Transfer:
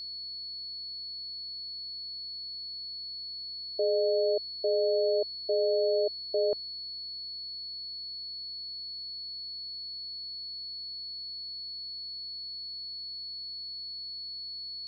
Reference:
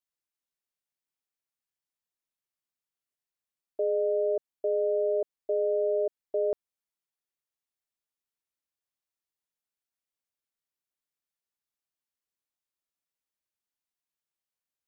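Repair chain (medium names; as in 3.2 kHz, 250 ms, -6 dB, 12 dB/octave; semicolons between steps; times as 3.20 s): de-click; de-hum 63.2 Hz, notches 9; band-stop 4.4 kHz, Q 30; noise print and reduce 30 dB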